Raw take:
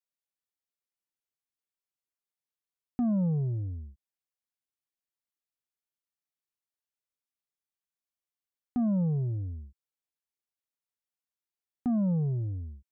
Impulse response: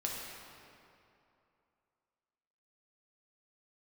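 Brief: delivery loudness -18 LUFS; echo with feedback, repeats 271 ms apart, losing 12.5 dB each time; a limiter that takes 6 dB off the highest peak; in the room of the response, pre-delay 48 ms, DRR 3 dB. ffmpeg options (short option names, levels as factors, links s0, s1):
-filter_complex "[0:a]alimiter=level_in=2:limit=0.0631:level=0:latency=1,volume=0.501,aecho=1:1:271|542|813:0.237|0.0569|0.0137,asplit=2[s0][s1];[1:a]atrim=start_sample=2205,adelay=48[s2];[s1][s2]afir=irnorm=-1:irlink=0,volume=0.501[s3];[s0][s3]amix=inputs=2:normalize=0,volume=5.96"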